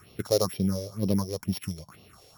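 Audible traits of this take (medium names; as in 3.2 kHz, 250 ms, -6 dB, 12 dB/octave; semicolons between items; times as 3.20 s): a buzz of ramps at a fixed pitch in blocks of 8 samples; phasing stages 4, 2.1 Hz, lowest notch 200–1500 Hz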